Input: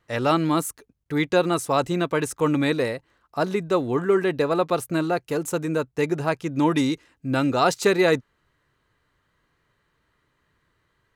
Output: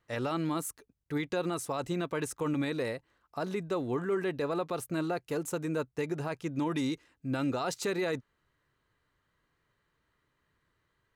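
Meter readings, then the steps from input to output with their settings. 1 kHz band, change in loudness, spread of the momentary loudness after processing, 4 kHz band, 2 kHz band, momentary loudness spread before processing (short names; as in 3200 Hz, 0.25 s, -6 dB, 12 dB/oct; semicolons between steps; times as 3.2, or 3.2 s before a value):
-12.0 dB, -10.5 dB, 5 LU, -11.0 dB, -11.0 dB, 7 LU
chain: limiter -16.5 dBFS, peak gain reduction 9 dB; gain -7 dB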